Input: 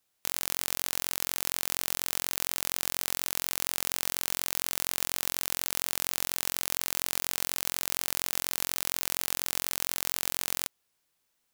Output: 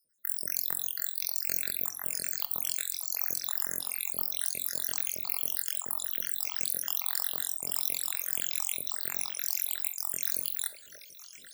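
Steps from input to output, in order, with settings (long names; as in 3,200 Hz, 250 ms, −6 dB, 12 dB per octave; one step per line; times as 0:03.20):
time-frequency cells dropped at random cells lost 85%
high-pass filter 64 Hz
high-shelf EQ 6,400 Hz +10 dB
reversed playback
upward compression, threshold −32 dBFS
reversed playback
echo through a band-pass that steps 585 ms, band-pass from 690 Hz, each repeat 1.4 octaves, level −5 dB
on a send at −9.5 dB: convolution reverb RT60 0.65 s, pre-delay 5 ms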